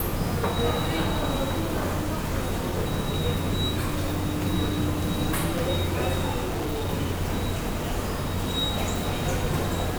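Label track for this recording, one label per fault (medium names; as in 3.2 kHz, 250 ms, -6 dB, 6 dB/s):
6.430000	6.900000	clipped -24.5 dBFS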